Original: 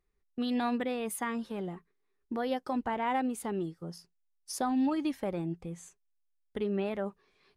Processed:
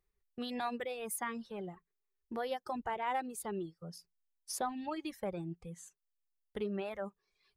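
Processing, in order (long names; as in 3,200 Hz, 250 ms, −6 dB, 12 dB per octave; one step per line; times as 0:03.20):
high-shelf EQ 10,000 Hz +5.5 dB
reverb reduction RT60 1.1 s
parametric band 270 Hz −14 dB 0.23 octaves
level −3 dB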